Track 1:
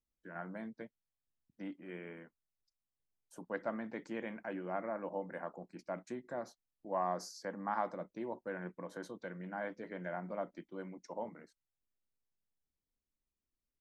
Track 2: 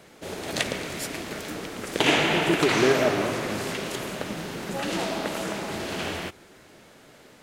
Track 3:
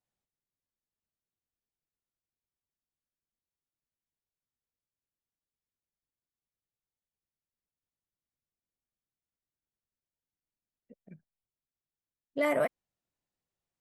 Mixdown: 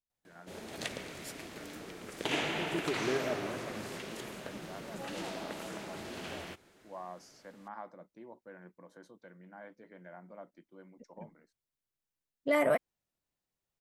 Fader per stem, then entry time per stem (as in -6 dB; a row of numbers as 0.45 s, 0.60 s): -9.5 dB, -12.0 dB, +0.5 dB; 0.00 s, 0.25 s, 0.10 s